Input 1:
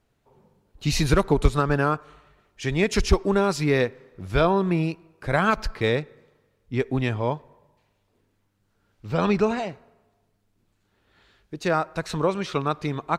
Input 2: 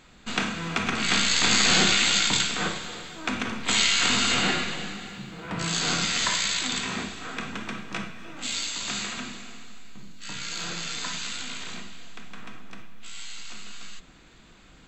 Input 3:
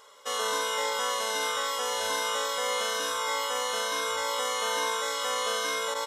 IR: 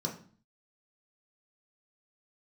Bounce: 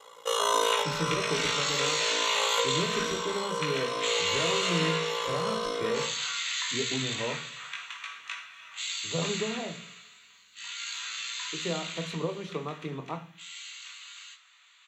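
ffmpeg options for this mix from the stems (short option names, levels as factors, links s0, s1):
-filter_complex "[0:a]acompressor=threshold=0.0794:ratio=6,volume=0.282,asplit=3[s0][s1][s2];[s1]volume=0.501[s3];[1:a]highpass=f=1300:w=0.5412,highpass=f=1300:w=1.3066,acompressor=threshold=0.0316:ratio=2,flanger=delay=18:depth=5.5:speed=0.27,adelay=350,volume=1.19,asplit=2[s4][s5];[s5]volume=0.501[s6];[2:a]aecho=1:1:6:0.9,aeval=exprs='val(0)*sin(2*PI*28*n/s)':c=same,volume=1.26,asplit=2[s7][s8];[s8]volume=0.335[s9];[s2]apad=whole_len=267610[s10];[s7][s10]sidechaincompress=threshold=0.002:ratio=8:attack=6.2:release=369[s11];[3:a]atrim=start_sample=2205[s12];[s3][s6][s9]amix=inputs=3:normalize=0[s13];[s13][s12]afir=irnorm=-1:irlink=0[s14];[s0][s4][s11][s14]amix=inputs=4:normalize=0"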